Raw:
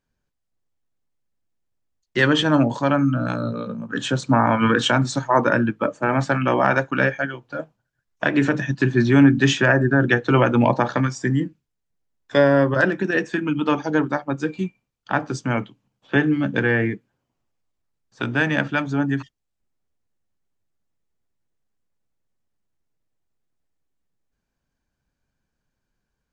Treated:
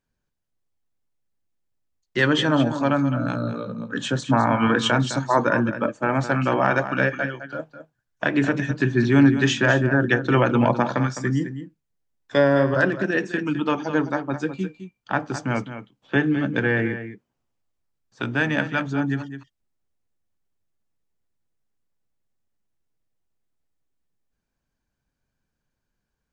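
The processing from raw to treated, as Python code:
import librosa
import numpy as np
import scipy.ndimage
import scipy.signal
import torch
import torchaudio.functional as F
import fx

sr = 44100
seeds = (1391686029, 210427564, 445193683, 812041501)

y = x + 10.0 ** (-11.0 / 20.0) * np.pad(x, (int(209 * sr / 1000.0), 0))[:len(x)]
y = y * 10.0 ** (-2.0 / 20.0)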